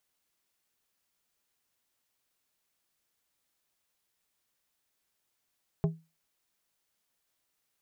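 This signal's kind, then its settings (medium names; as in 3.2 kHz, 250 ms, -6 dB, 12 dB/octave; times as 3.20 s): glass hit plate, lowest mode 162 Hz, decay 0.27 s, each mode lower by 6.5 dB, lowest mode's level -20.5 dB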